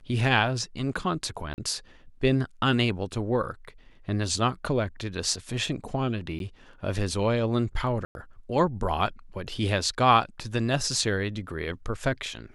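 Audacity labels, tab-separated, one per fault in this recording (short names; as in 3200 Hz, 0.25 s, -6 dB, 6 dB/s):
1.540000	1.580000	gap 39 ms
6.390000	6.400000	gap 12 ms
8.050000	8.150000	gap 0.101 s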